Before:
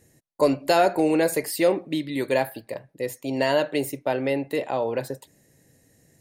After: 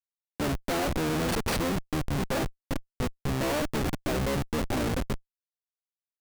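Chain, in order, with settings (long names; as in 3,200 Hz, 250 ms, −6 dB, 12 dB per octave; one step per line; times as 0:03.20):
pitch-shifted copies added −12 semitones −1 dB
comparator with hysteresis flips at −24.5 dBFS
level −4.5 dB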